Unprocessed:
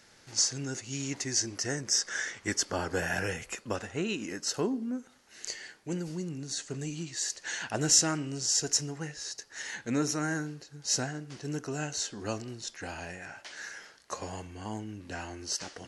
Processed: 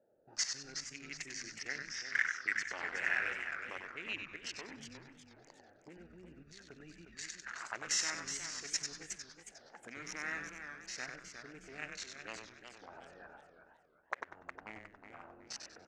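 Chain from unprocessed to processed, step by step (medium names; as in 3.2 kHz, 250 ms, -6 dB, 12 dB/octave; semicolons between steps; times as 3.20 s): local Wiener filter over 41 samples; 1.47–2.03 s: low-pass 5.6 kHz 24 dB/octave; level held to a coarse grid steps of 13 dB; 13.43–14.36 s: hysteresis with a dead band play -48.5 dBFS; auto-wah 580–2100 Hz, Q 4, up, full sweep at -42.5 dBFS; frequency-shifting echo 96 ms, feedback 31%, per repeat -120 Hz, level -6 dB; modulated delay 364 ms, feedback 34%, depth 160 cents, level -8 dB; trim +14.5 dB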